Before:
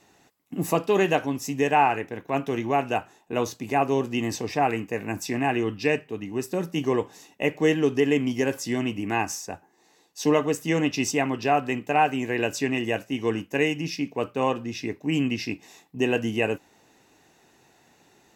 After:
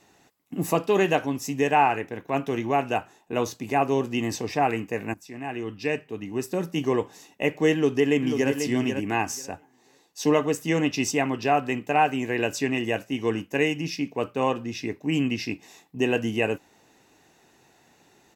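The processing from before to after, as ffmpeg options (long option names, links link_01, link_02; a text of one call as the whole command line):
ffmpeg -i in.wav -filter_complex "[0:a]asplit=2[link_01][link_02];[link_02]afade=type=in:start_time=7.73:duration=0.01,afade=type=out:start_time=8.51:duration=0.01,aecho=0:1:490|980|1470:0.446684|0.0670025|0.0100504[link_03];[link_01][link_03]amix=inputs=2:normalize=0,asplit=2[link_04][link_05];[link_04]atrim=end=5.14,asetpts=PTS-STARTPTS,afade=type=out:start_time=5.136:duration=0.004:curve=hsin:silence=0.112202[link_06];[link_05]atrim=start=5.14,asetpts=PTS-STARTPTS,afade=type=in:duration=1.21:silence=0.112202[link_07];[link_06][link_07]concat=n=2:v=0:a=1" out.wav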